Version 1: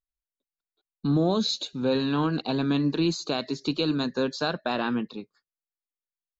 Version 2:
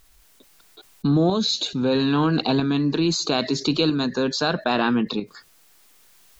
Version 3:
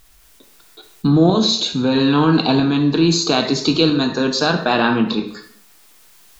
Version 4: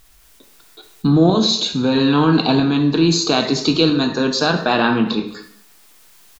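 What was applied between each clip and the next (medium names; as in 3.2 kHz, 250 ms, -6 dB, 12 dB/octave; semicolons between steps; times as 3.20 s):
band-stop 560 Hz, Q 12; tremolo saw up 0.77 Hz, depth 55%; level flattener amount 50%; trim +4.5 dB
plate-style reverb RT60 0.65 s, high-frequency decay 0.85×, DRR 4.5 dB; trim +4.5 dB
delay 219 ms -23 dB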